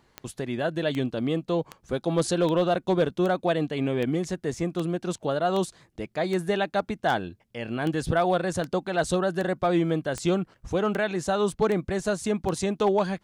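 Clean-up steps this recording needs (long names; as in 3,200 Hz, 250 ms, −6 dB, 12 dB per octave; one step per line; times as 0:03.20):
clipped peaks rebuilt −14.5 dBFS
click removal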